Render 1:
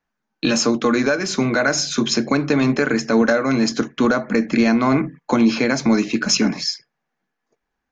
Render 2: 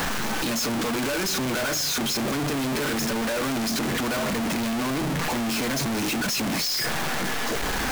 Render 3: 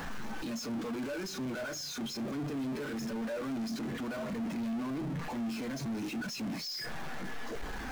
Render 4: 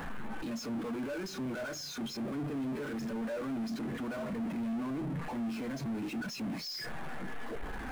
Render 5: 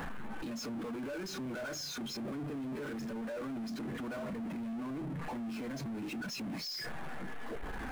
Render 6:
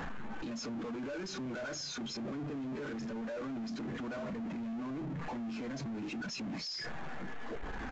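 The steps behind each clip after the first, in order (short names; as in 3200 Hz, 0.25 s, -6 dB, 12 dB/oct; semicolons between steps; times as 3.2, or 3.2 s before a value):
infinite clipping; gain -6.5 dB
spectral expander 1.5:1; gain -5.5 dB
Wiener smoothing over 9 samples
limiter -37.5 dBFS, peak gain reduction 6.5 dB; gain +1.5 dB
downsampling 16000 Hz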